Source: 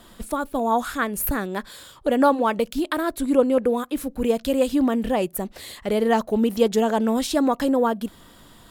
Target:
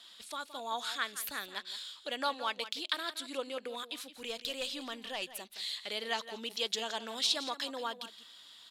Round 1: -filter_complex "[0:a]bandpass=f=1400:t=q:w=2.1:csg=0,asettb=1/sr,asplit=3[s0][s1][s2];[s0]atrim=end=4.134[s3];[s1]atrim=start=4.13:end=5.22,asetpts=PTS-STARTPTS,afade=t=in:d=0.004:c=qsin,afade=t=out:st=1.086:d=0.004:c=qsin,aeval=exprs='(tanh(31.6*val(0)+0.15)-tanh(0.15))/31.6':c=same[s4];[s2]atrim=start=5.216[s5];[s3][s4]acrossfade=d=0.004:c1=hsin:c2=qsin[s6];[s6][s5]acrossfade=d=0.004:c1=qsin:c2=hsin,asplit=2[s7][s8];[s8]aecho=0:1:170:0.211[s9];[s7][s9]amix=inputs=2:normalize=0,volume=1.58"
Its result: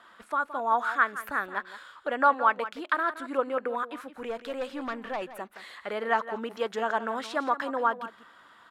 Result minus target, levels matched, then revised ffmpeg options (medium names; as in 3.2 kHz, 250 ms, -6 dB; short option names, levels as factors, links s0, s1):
4 kHz band -18.5 dB
-filter_complex "[0:a]bandpass=f=3900:t=q:w=2.1:csg=0,asettb=1/sr,asplit=3[s0][s1][s2];[s0]atrim=end=4.134[s3];[s1]atrim=start=4.13:end=5.22,asetpts=PTS-STARTPTS,afade=t=in:d=0.004:c=qsin,afade=t=out:st=1.086:d=0.004:c=qsin,aeval=exprs='(tanh(31.6*val(0)+0.15)-tanh(0.15))/31.6':c=same[s4];[s2]atrim=start=5.216[s5];[s3][s4]acrossfade=d=0.004:c1=hsin:c2=qsin[s6];[s6][s5]acrossfade=d=0.004:c1=qsin:c2=hsin,asplit=2[s7][s8];[s8]aecho=0:1:170:0.211[s9];[s7][s9]amix=inputs=2:normalize=0,volume=1.58"